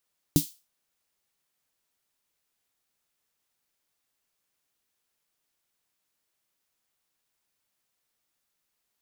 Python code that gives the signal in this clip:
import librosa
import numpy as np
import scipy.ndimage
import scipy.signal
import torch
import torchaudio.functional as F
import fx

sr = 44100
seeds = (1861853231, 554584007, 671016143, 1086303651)

y = fx.drum_snare(sr, seeds[0], length_s=0.31, hz=160.0, second_hz=290.0, noise_db=-9, noise_from_hz=3600.0, decay_s=0.11, noise_decay_s=0.31)